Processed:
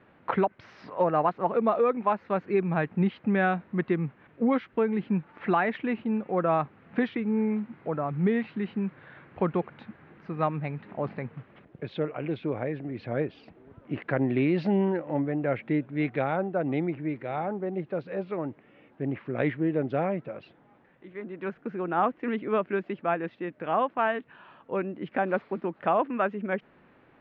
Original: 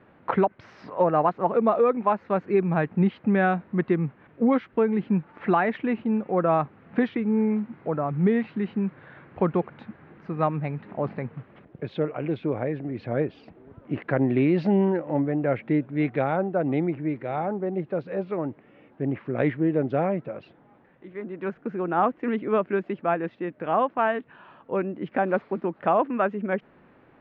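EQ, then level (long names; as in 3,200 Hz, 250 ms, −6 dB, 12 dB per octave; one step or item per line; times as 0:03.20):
high-frequency loss of the air 110 metres
high-shelf EQ 2,400 Hz +10 dB
−3.5 dB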